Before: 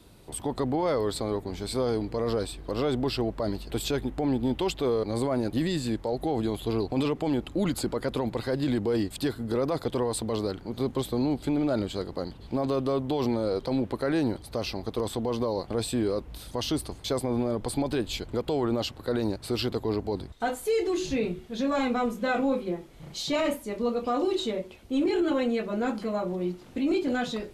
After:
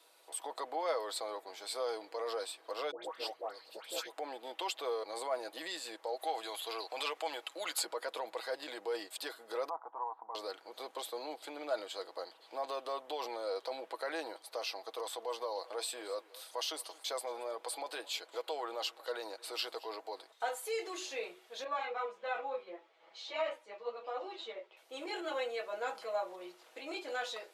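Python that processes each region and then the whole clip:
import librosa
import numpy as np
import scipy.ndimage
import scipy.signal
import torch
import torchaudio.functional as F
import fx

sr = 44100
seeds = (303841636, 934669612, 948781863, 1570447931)

y = fx.chain(x, sr, fx.ring_mod(carrier_hz=100.0),
    fx.dispersion(late='highs', ms=124.0, hz=1300.0), at=(2.91, 4.12))
y = fx.chain(y, sr, fx.highpass(hz=170.0, slope=12),
    fx.tilt_shelf(db=-5.5, hz=670.0), at=(6.19, 7.85))
y = fx.chain(y, sr, fx.lowpass(hz=1000.0, slope=24),
    fx.low_shelf_res(hz=690.0, db=-8.5, q=3.0), at=(9.69, 10.35))
y = fx.chain(y, sr, fx.highpass(hz=270.0, slope=6),
    fx.echo_single(ms=225, db=-20.5), at=(14.97, 20.31))
y = fx.chain(y, sr, fx.bandpass_edges(low_hz=120.0, high_hz=3300.0),
    fx.ensemble(), at=(21.64, 24.77))
y = scipy.signal.sosfilt(scipy.signal.butter(4, 550.0, 'highpass', fs=sr, output='sos'), y)
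y = y + 0.41 * np.pad(y, (int(6.2 * sr / 1000.0), 0))[:len(y)]
y = y * librosa.db_to_amplitude(-5.0)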